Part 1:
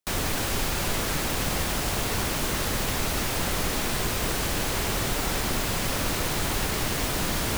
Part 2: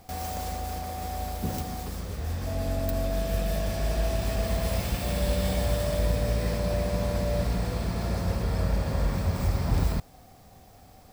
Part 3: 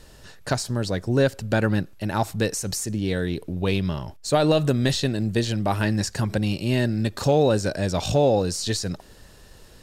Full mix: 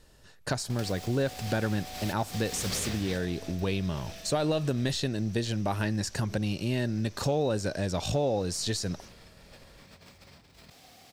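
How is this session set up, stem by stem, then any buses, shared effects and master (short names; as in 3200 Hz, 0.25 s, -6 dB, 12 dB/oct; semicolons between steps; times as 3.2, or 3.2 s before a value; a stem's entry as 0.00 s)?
-16.5 dB, 1.50 s, no send, ladder low-pass 6100 Hz, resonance 80%
4.79 s -1.5 dB -> 5.08 s -11.5 dB, 0.70 s, no send, weighting filter D; negative-ratio compressor -38 dBFS, ratio -0.5
-1.0 dB, 0.00 s, no send, gate -40 dBFS, range -9 dB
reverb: off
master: compressor 2:1, threshold -30 dBFS, peak gain reduction 8 dB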